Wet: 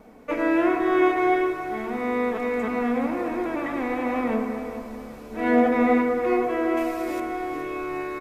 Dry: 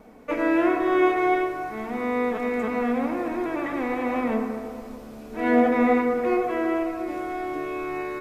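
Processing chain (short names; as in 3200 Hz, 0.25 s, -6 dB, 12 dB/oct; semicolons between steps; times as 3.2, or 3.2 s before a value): 6.77–7.2 high shelf 2800 Hz +11.5 dB; on a send: feedback echo 0.422 s, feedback 46%, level -12.5 dB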